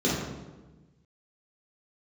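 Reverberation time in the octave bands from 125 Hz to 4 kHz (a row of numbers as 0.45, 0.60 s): 1.7, 1.5, 1.3, 1.1, 0.90, 0.80 s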